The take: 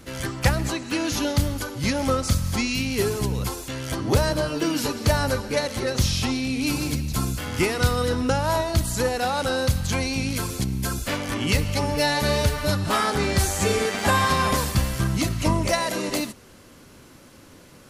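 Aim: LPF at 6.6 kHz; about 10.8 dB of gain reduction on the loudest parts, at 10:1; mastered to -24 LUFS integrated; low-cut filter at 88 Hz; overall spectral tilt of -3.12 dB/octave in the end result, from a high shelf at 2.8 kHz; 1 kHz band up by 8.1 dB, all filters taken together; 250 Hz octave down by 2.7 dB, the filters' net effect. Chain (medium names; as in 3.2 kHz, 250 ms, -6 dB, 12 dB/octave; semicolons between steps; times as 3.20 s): high-pass 88 Hz; low-pass 6.6 kHz; peaking EQ 250 Hz -4 dB; peaking EQ 1 kHz +8.5 dB; treble shelf 2.8 kHz +9 dB; compression 10:1, threshold -21 dBFS; trim +1.5 dB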